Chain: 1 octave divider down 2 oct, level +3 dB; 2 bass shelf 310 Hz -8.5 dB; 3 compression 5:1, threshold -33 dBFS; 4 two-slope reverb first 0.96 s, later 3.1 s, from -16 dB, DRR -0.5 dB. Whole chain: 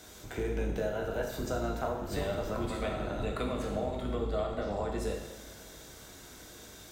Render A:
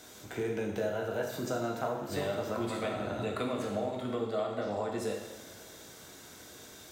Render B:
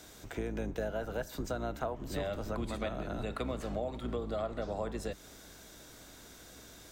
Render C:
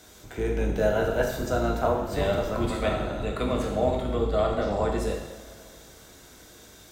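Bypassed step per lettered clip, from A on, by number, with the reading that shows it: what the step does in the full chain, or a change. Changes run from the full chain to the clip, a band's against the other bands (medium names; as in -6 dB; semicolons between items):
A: 1, 125 Hz band -4.0 dB; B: 4, crest factor change +2.0 dB; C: 3, crest factor change +1.5 dB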